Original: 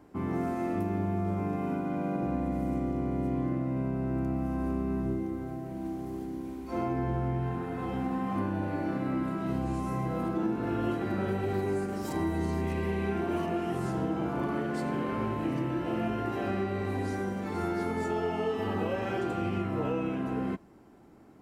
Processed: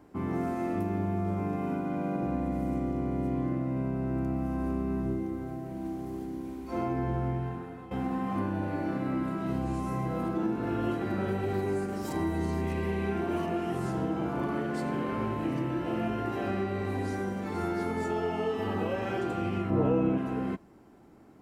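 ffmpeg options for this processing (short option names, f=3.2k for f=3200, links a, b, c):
-filter_complex "[0:a]asettb=1/sr,asplit=3[a][b][c];[a]atrim=end=19.704[d];[b]atrim=start=19.7:end=20.18,asetpts=PTS-STARTPTS,afade=t=in:d=0.004:c=qsin,afade=t=out:st=0.476:d=0.004:c=qsin,tiltshelf=f=1.3k:g=6.5[e];[c]atrim=start=20.176[f];[d][e]acrossfade=d=0.004:c1=hsin:c2=qsin[g];[g][f]acrossfade=d=0.004:c1=qsin:c2=hsin,asplit=2[h][i];[h]atrim=end=7.91,asetpts=PTS-STARTPTS,afade=t=out:st=7.29:d=0.62:silence=0.188365[j];[i]atrim=start=7.91,asetpts=PTS-STARTPTS,afade=t=in:d=0.004:c=hsin:silence=0.188365[k];[j][k]concat=n=2:v=0:a=1"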